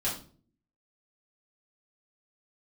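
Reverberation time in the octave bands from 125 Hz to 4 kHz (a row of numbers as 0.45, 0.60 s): 0.75, 0.75, 0.50, 0.35, 0.30, 0.35 s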